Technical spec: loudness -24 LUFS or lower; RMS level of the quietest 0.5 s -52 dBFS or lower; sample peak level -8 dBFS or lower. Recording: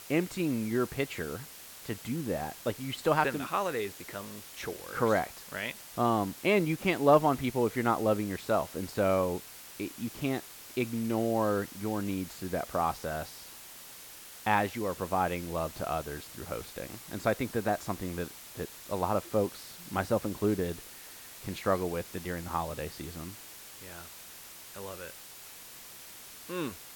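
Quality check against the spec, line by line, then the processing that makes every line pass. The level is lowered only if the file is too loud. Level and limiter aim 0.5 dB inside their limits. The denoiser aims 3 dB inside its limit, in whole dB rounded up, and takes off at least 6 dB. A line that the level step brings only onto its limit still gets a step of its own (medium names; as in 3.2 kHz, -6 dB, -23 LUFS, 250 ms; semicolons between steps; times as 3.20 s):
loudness -32.0 LUFS: pass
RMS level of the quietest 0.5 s -49 dBFS: fail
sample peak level -10.0 dBFS: pass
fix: noise reduction 6 dB, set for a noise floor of -49 dBFS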